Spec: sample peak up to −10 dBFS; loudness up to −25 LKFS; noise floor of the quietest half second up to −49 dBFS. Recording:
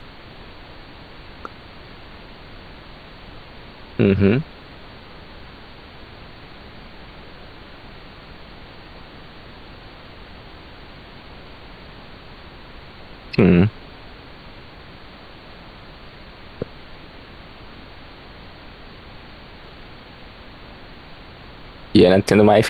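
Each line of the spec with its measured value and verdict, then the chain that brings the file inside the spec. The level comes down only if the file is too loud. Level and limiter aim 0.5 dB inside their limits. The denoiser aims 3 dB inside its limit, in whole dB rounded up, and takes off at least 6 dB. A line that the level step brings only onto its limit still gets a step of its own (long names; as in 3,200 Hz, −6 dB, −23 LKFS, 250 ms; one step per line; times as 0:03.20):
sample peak −2.0 dBFS: out of spec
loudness −17.0 LKFS: out of spec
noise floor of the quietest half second −41 dBFS: out of spec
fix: level −8.5 dB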